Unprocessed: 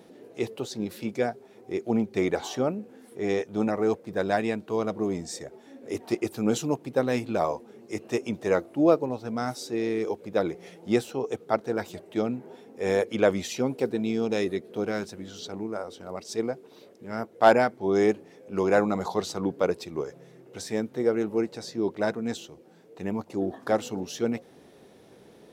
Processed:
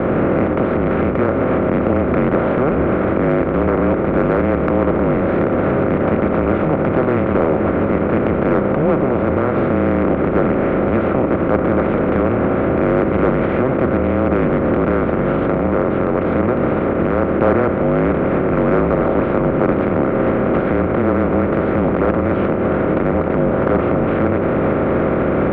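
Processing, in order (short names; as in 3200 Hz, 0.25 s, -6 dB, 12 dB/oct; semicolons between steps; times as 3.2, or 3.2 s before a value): per-bin compression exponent 0.2; recorder AGC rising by 61 dB/s; mistuned SSB -140 Hz 180–2500 Hz; in parallel at -11.5 dB: soft clip -13.5 dBFS, distortion -12 dB; on the sum: de-hum 58.73 Hz, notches 3; Doppler distortion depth 0.23 ms; gain -2.5 dB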